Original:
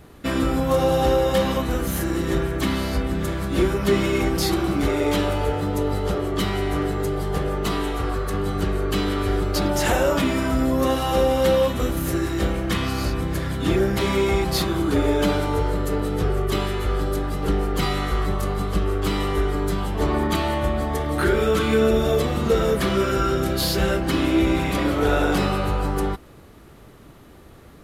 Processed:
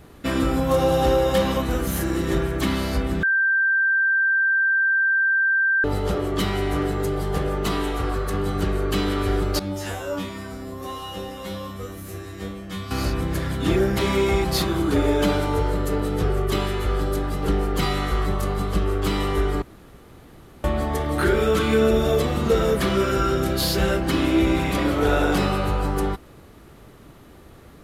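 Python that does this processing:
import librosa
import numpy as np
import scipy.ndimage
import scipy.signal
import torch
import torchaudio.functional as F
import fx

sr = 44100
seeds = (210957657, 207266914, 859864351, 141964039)

y = fx.comb_fb(x, sr, f0_hz=96.0, decay_s=0.32, harmonics='all', damping=0.0, mix_pct=100, at=(9.59, 12.91))
y = fx.edit(y, sr, fx.bleep(start_s=3.23, length_s=2.61, hz=1570.0, db=-16.5),
    fx.room_tone_fill(start_s=19.62, length_s=1.02), tone=tone)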